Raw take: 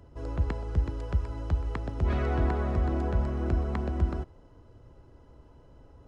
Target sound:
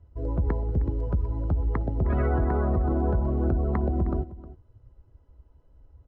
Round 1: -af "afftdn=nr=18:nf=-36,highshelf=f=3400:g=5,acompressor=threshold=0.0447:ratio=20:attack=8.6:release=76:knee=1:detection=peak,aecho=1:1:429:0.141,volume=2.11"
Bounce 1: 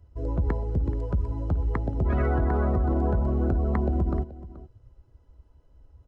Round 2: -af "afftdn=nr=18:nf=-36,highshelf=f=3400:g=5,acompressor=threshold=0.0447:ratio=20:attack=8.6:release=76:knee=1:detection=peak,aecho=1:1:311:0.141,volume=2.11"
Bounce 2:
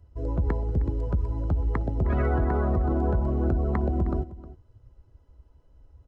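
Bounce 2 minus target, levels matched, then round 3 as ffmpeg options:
4 kHz band +5.0 dB
-af "afftdn=nr=18:nf=-36,highshelf=f=3400:g=-5.5,acompressor=threshold=0.0447:ratio=20:attack=8.6:release=76:knee=1:detection=peak,aecho=1:1:311:0.141,volume=2.11"

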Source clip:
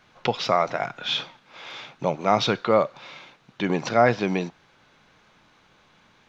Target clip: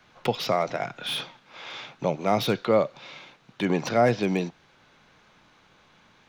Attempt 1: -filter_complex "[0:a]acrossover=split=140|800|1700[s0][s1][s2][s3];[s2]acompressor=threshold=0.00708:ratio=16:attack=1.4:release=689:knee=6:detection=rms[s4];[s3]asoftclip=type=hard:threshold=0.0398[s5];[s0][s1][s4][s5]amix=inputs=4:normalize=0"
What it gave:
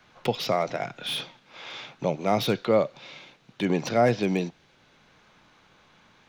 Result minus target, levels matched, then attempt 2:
compression: peak gain reduction +11 dB
-filter_complex "[0:a]acrossover=split=140|800|1700[s0][s1][s2][s3];[s2]acompressor=threshold=0.0266:ratio=16:attack=1.4:release=689:knee=6:detection=rms[s4];[s3]asoftclip=type=hard:threshold=0.0398[s5];[s0][s1][s4][s5]amix=inputs=4:normalize=0"

